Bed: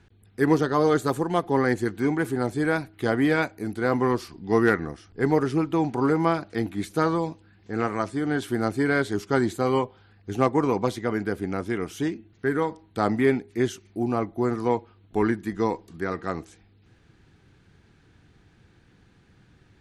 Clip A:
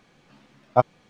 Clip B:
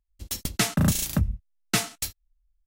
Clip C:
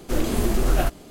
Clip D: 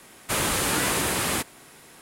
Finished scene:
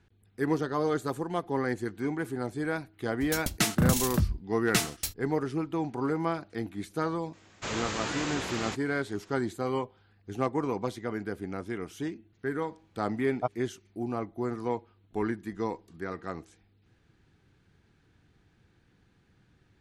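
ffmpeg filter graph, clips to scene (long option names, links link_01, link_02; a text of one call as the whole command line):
ffmpeg -i bed.wav -i cue0.wav -i cue1.wav -i cue2.wav -i cue3.wav -filter_complex "[0:a]volume=-7.5dB[link_01];[4:a]aresample=16000,aresample=44100[link_02];[2:a]atrim=end=2.66,asetpts=PTS-STARTPTS,volume=-2.5dB,afade=type=in:duration=0.004:curve=hsin,afade=type=out:start_time=2.656:duration=0.004:curve=hsin,adelay=3010[link_03];[link_02]atrim=end=2.01,asetpts=PTS-STARTPTS,volume=-8.5dB,afade=type=in:duration=0.004:curve=hsin,afade=type=out:start_time=2.006:duration=0.004:curve=hsin,adelay=7330[link_04];[1:a]atrim=end=1.09,asetpts=PTS-STARTPTS,volume=-12.5dB,afade=type=in:duration=0.004:curve=hsin,afade=type=out:start_time=1.086:duration=0.004:curve=hsin,adelay=12660[link_05];[link_01][link_03][link_04][link_05]amix=inputs=4:normalize=0" out.wav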